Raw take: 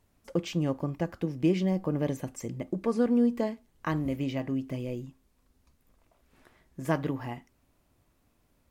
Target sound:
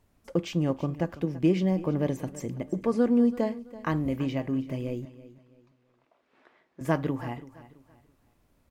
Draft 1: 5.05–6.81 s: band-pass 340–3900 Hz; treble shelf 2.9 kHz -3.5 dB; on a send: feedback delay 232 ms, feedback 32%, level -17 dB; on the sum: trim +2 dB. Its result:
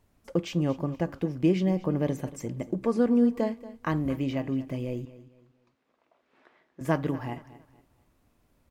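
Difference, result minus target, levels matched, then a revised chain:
echo 100 ms early
5.05–6.81 s: band-pass 340–3900 Hz; treble shelf 2.9 kHz -3.5 dB; on a send: feedback delay 332 ms, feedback 32%, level -17 dB; on the sum: trim +2 dB

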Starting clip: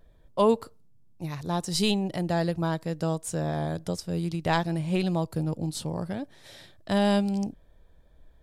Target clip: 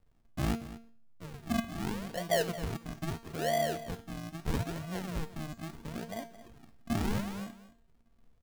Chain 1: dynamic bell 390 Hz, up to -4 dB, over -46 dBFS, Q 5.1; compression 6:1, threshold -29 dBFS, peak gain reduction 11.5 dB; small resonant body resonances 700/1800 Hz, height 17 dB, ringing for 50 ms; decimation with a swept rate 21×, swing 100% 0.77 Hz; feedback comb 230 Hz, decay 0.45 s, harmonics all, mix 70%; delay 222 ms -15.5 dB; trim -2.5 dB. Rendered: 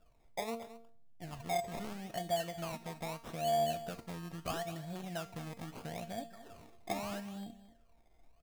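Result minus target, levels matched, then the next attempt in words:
compression: peak gain reduction +11.5 dB; decimation with a swept rate: distortion -15 dB
dynamic bell 390 Hz, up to -4 dB, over -46 dBFS, Q 5.1; small resonant body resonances 700/1800 Hz, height 17 dB, ringing for 50 ms; decimation with a swept rate 65×, swing 100% 0.77 Hz; feedback comb 230 Hz, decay 0.45 s, harmonics all, mix 70%; delay 222 ms -15.5 dB; trim -2.5 dB

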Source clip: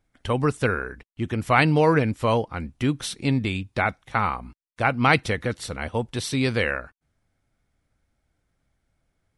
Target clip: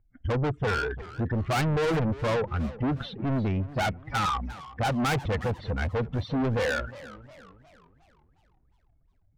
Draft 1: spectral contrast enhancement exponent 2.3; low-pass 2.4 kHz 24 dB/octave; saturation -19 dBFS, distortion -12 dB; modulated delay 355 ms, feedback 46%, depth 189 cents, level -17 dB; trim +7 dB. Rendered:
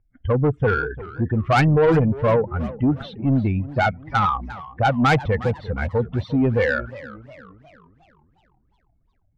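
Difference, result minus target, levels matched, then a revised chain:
saturation: distortion -8 dB
spectral contrast enhancement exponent 2.3; low-pass 2.4 kHz 24 dB/octave; saturation -31 dBFS, distortion -4 dB; modulated delay 355 ms, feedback 46%, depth 189 cents, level -17 dB; trim +7 dB

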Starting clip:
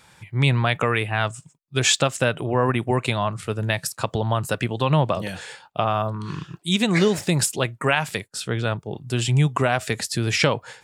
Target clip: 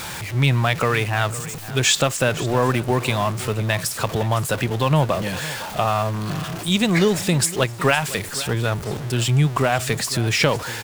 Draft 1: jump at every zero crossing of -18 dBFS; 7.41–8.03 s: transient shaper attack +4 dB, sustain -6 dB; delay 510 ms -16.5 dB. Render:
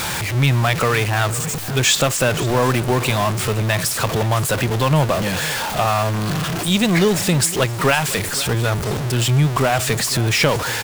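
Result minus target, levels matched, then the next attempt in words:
jump at every zero crossing: distortion +6 dB
jump at every zero crossing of -26 dBFS; 7.41–8.03 s: transient shaper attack +4 dB, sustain -6 dB; delay 510 ms -16.5 dB

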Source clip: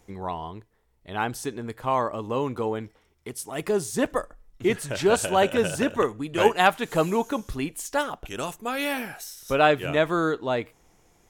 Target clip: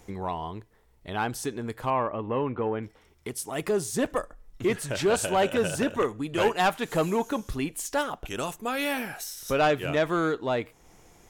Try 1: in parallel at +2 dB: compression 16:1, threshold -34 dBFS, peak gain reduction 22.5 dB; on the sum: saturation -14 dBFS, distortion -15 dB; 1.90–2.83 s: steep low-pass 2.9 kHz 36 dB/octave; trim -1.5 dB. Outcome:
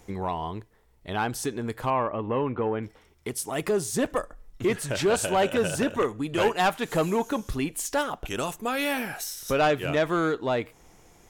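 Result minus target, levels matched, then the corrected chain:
compression: peak gain reduction -8 dB
in parallel at +2 dB: compression 16:1, threshold -42.5 dBFS, peak gain reduction 30.5 dB; on the sum: saturation -14 dBFS, distortion -15 dB; 1.90–2.83 s: steep low-pass 2.9 kHz 36 dB/octave; trim -1.5 dB

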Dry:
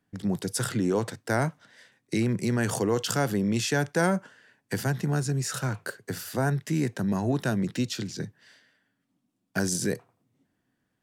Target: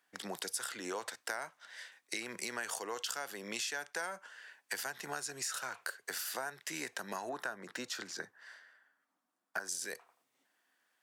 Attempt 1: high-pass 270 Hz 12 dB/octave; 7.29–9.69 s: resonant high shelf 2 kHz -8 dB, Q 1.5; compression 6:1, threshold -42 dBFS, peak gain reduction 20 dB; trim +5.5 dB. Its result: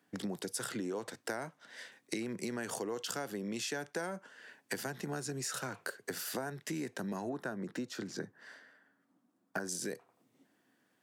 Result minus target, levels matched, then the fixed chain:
250 Hz band +9.5 dB
high-pass 870 Hz 12 dB/octave; 7.29–9.69 s: resonant high shelf 2 kHz -8 dB, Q 1.5; compression 6:1, threshold -42 dBFS, peak gain reduction 17 dB; trim +5.5 dB

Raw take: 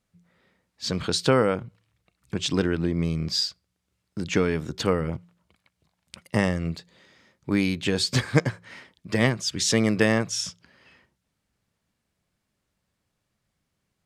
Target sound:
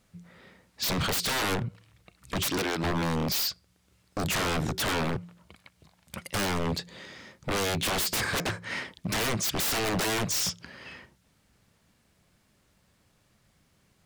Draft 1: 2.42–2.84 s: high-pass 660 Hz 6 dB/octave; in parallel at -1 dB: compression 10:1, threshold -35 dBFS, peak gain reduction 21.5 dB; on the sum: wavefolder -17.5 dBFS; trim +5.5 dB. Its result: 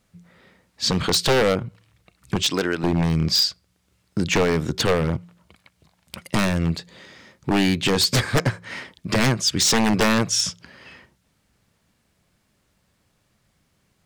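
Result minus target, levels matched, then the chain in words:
wavefolder: distortion -17 dB
2.42–2.84 s: high-pass 660 Hz 6 dB/octave; in parallel at -1 dB: compression 10:1, threshold -35 dBFS, peak gain reduction 21.5 dB; on the sum: wavefolder -28.5 dBFS; trim +5.5 dB

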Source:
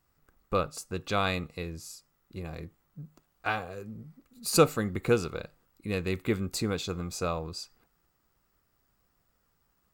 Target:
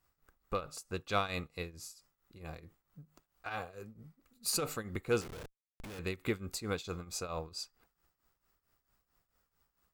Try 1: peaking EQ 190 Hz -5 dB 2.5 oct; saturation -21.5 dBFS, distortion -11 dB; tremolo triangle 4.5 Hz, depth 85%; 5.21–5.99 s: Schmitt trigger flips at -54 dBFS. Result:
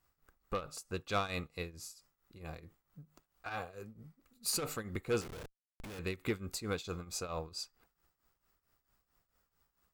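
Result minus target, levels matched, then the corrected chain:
saturation: distortion +8 dB
peaking EQ 190 Hz -5 dB 2.5 oct; saturation -14.5 dBFS, distortion -19 dB; tremolo triangle 4.5 Hz, depth 85%; 5.21–5.99 s: Schmitt trigger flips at -54 dBFS

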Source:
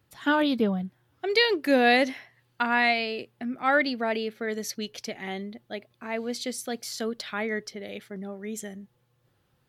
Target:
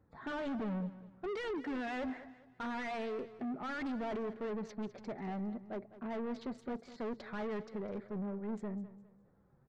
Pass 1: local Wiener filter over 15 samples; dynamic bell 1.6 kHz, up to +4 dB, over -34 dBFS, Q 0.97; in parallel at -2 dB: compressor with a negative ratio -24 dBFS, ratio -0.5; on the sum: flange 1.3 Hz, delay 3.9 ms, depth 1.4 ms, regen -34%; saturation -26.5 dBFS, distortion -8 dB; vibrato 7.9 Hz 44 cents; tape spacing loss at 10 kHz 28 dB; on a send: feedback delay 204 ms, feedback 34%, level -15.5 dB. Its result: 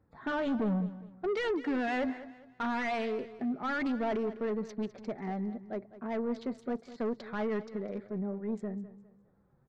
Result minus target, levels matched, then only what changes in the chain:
saturation: distortion -4 dB
change: saturation -35 dBFS, distortion -3 dB

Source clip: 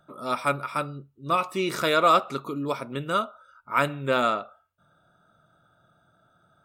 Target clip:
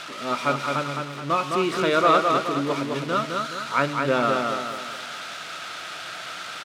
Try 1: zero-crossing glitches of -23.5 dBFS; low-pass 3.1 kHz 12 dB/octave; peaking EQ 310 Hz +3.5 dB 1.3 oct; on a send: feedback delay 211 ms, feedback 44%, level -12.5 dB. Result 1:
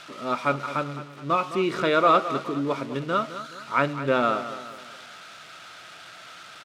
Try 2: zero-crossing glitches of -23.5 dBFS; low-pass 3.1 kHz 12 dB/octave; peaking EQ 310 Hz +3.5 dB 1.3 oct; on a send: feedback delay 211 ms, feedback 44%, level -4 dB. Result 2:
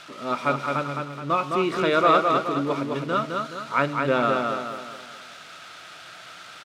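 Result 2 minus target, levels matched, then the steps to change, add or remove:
zero-crossing glitches: distortion -8 dB
change: zero-crossing glitches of -15.5 dBFS

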